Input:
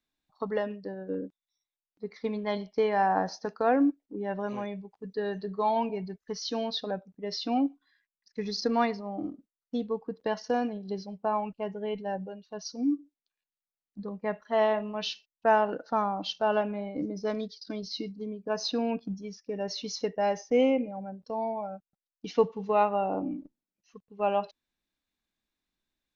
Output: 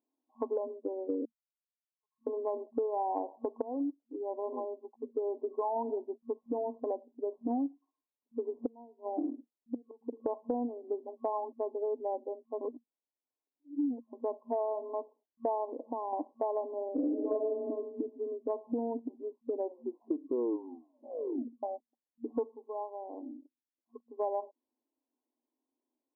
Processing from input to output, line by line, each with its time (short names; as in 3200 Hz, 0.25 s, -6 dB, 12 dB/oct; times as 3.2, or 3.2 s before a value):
1.25–2.27 steep high-pass 1600 Hz
3.62–5.78 fade in equal-power, from -19.5 dB
8.66–10.13 flipped gate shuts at -24 dBFS, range -28 dB
12.61–14.13 reverse
15.65–16.13 compressor 4:1, threshold -34 dBFS
16.94–17.59 reverb throw, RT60 0.97 s, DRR -9 dB
19.57 tape stop 2.06 s
22.28–24.08 dip -16.5 dB, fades 0.36 s
whole clip: FFT band-pass 230–1100 Hz; low shelf 440 Hz +10 dB; compressor 6:1, threshold -29 dBFS; gain -1 dB